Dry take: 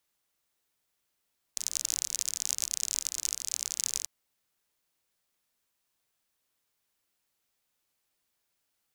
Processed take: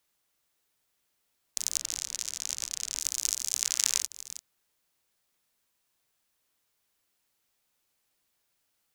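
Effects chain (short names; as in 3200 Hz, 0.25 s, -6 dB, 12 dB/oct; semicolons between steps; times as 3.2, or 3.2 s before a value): reverse delay 0.314 s, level -12.5 dB; 1.77–3 LPF 4000 Hz 6 dB/oct; 3.62–4.02 bell 1700 Hz +8 dB 2.9 oct; gain +2.5 dB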